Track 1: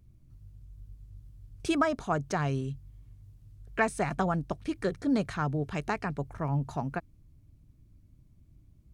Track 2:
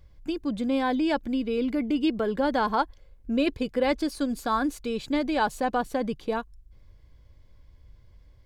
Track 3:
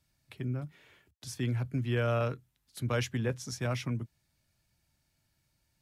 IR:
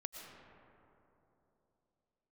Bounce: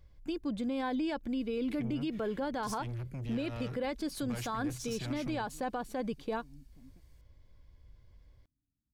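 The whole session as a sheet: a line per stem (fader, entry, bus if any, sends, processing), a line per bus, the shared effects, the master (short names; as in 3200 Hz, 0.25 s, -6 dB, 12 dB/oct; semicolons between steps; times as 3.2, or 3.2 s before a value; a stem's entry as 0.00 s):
-18.0 dB, 0.00 s, no send, vocal tract filter i
-5.0 dB, 0.00 s, no send, dry
+2.5 dB, 1.40 s, no send, bell 820 Hz -5.5 dB 2.9 oct; limiter -29 dBFS, peak gain reduction 7.5 dB; soft clip -38.5 dBFS, distortion -10 dB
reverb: off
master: limiter -26.5 dBFS, peak gain reduction 10 dB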